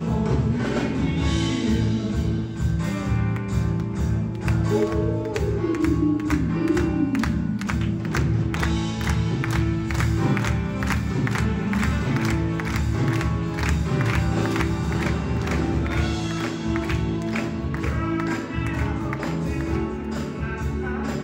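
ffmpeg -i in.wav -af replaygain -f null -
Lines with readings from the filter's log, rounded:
track_gain = +7.2 dB
track_peak = 0.231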